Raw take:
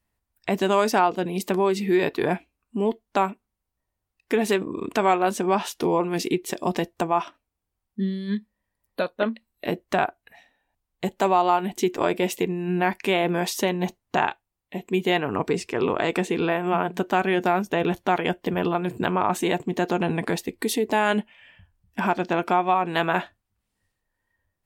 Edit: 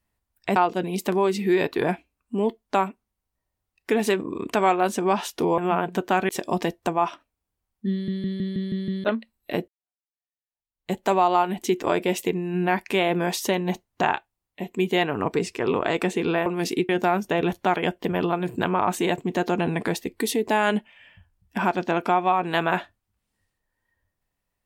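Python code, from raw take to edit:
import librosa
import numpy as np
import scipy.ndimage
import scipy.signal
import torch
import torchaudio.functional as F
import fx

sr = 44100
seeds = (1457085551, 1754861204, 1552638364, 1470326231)

y = fx.edit(x, sr, fx.cut(start_s=0.56, length_s=0.42),
    fx.swap(start_s=6.0, length_s=0.43, other_s=16.6, other_length_s=0.71),
    fx.stutter_over(start_s=8.06, slice_s=0.16, count=7),
    fx.fade_in_span(start_s=9.82, length_s=1.24, curve='exp'), tone=tone)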